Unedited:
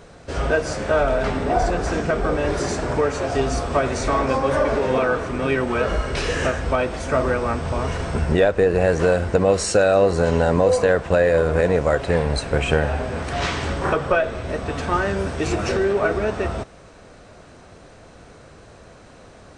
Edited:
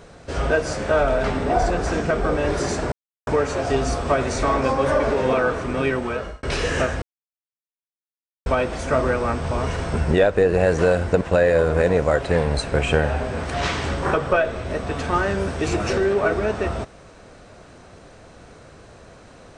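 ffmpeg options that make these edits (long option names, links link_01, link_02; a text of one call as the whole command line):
ffmpeg -i in.wav -filter_complex "[0:a]asplit=5[link_01][link_02][link_03][link_04][link_05];[link_01]atrim=end=2.92,asetpts=PTS-STARTPTS,afade=type=out:start_time=2.916:duration=0.004:curve=hsin,apad=pad_dur=0.35[link_06];[link_02]atrim=start=2.92:end=6.08,asetpts=PTS-STARTPTS,afade=type=in:duration=0.004:curve=hsin,afade=type=out:start_time=2.39:duration=0.77:curve=qsin[link_07];[link_03]atrim=start=6.08:end=6.67,asetpts=PTS-STARTPTS,afade=type=in:duration=0.004:curve=hsin,afade=type=out:start_time=0.586:duration=0.004:curve=hsin,apad=pad_dur=1.44[link_08];[link_04]atrim=start=6.67:end=9.422,asetpts=PTS-STARTPTS,afade=type=in:duration=0.004:curve=hsin[link_09];[link_05]atrim=start=10.998[link_10];[link_06][link_07][link_08][link_09]concat=n=4:v=0:a=1[link_11];[link_11][link_10]acrossfade=duration=0.004:curve1=hsin:curve2=hsin" out.wav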